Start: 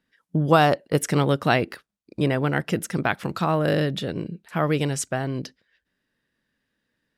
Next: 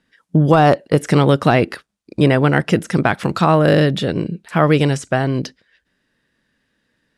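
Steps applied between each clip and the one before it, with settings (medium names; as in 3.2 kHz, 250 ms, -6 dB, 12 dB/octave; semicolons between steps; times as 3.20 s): de-esser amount 75%; low-pass 11 kHz 24 dB/octave; loudness maximiser +10 dB; trim -1 dB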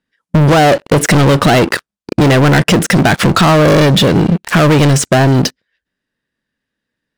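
waveshaping leveller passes 5; compression, threshold -7 dBFS, peak gain reduction 3.5 dB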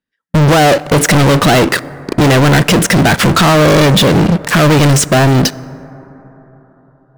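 waveshaping leveller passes 3; plate-style reverb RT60 4.3 s, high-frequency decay 0.25×, DRR 18 dB; trim -3 dB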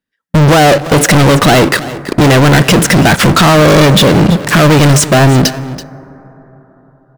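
delay 331 ms -16 dB; trim +2 dB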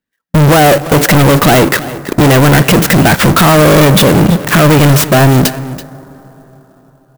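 sampling jitter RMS 0.037 ms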